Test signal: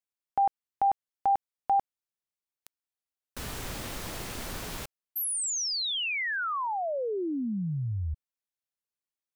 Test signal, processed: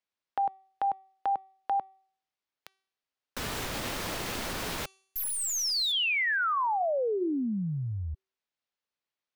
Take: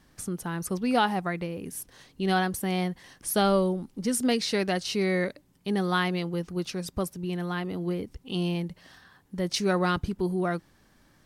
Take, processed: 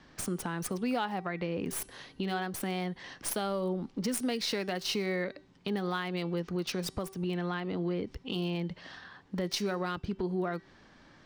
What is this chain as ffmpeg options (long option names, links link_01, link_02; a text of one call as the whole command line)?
ffmpeg -i in.wav -filter_complex "[0:a]acrossover=split=170|5800[link_01][link_02][link_03];[link_03]acrusher=bits=5:dc=4:mix=0:aa=0.000001[link_04];[link_01][link_02][link_04]amix=inputs=3:normalize=0,acompressor=threshold=-31dB:ratio=6:attack=1.5:release=227:knee=1:detection=rms,lowshelf=frequency=150:gain=-8,bandreject=frequency=383.9:width_type=h:width=4,bandreject=frequency=767.8:width_type=h:width=4,bandreject=frequency=1151.7:width_type=h:width=4,bandreject=frequency=1535.6:width_type=h:width=4,bandreject=frequency=1919.5:width_type=h:width=4,bandreject=frequency=2303.4:width_type=h:width=4,bandreject=frequency=2687.3:width_type=h:width=4,bandreject=frequency=3071.2:width_type=h:width=4,bandreject=frequency=3455.1:width_type=h:width=4,bandreject=frequency=3839:width_type=h:width=4,bandreject=frequency=4222.9:width_type=h:width=4,bandreject=frequency=4606.8:width_type=h:width=4,bandreject=frequency=4990.7:width_type=h:width=4,bandreject=frequency=5374.6:width_type=h:width=4,bandreject=frequency=5758.5:width_type=h:width=4,bandreject=frequency=6142.4:width_type=h:width=4,bandreject=frequency=6526.3:width_type=h:width=4,bandreject=frequency=6910.2:width_type=h:width=4,bandreject=frequency=7294.1:width_type=h:width=4,bandreject=frequency=7678:width_type=h:width=4,bandreject=frequency=8061.9:width_type=h:width=4,bandreject=frequency=8445.8:width_type=h:width=4,bandreject=frequency=8829.7:width_type=h:width=4,bandreject=frequency=9213.6:width_type=h:width=4,bandreject=frequency=9597.5:width_type=h:width=4,bandreject=frequency=9981.4:width_type=h:width=4,bandreject=frequency=10365.3:width_type=h:width=4,bandreject=frequency=10749.2:width_type=h:width=4,bandreject=frequency=11133.1:width_type=h:width=4,volume=6dB" out.wav